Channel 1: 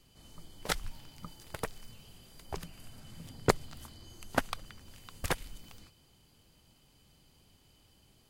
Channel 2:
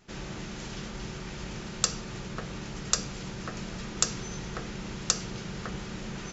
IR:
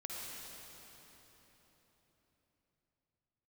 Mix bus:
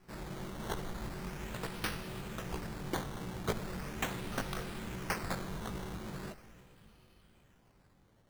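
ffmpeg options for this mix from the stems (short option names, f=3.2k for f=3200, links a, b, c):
-filter_complex "[0:a]asoftclip=type=tanh:threshold=-21dB,volume=-3.5dB,asplit=2[a][b];[b]volume=-3.5dB[c];[1:a]highshelf=f=9k:g=7,aeval=exprs='(mod(7.5*val(0)+1,2)-1)/7.5':c=same,volume=-3dB,asplit=2[d][e];[e]volume=-11.5dB[f];[2:a]atrim=start_sample=2205[g];[c][f]amix=inputs=2:normalize=0[h];[h][g]afir=irnorm=-1:irlink=0[i];[a][d][i]amix=inputs=3:normalize=0,flanger=delay=16:depth=5.8:speed=1.2,acrusher=samples=12:mix=1:aa=0.000001:lfo=1:lforange=12:lforate=0.39"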